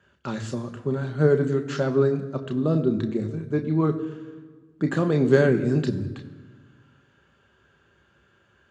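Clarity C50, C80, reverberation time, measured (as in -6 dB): 13.0 dB, 14.0 dB, 1.5 s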